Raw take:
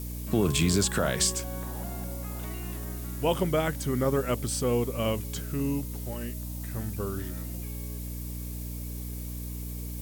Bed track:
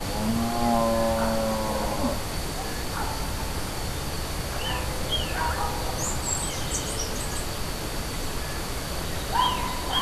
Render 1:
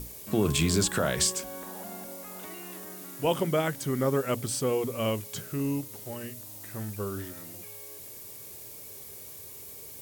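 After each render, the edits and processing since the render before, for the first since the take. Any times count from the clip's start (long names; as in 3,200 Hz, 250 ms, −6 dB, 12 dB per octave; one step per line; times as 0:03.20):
mains-hum notches 60/120/180/240/300 Hz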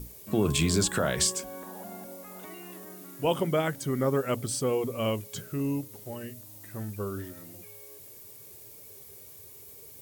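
broadband denoise 6 dB, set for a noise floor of −45 dBFS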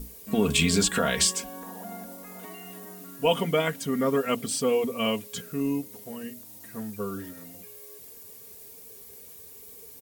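dynamic equaliser 2,700 Hz, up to +6 dB, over −48 dBFS, Q 1.3
comb filter 4.3 ms, depth 74%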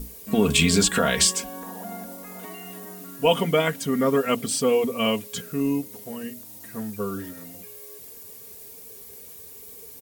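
level +3.5 dB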